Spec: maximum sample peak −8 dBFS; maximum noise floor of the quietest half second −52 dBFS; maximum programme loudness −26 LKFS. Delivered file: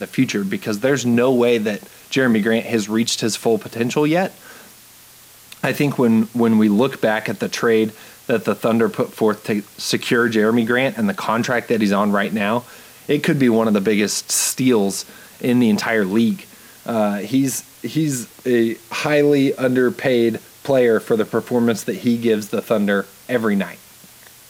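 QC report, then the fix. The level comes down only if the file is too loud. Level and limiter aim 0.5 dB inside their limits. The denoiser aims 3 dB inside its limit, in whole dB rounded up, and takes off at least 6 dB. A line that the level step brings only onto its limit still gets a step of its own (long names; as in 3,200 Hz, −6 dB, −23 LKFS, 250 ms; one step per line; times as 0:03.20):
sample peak −5.5 dBFS: out of spec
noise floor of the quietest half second −45 dBFS: out of spec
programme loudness −18.5 LKFS: out of spec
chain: level −8 dB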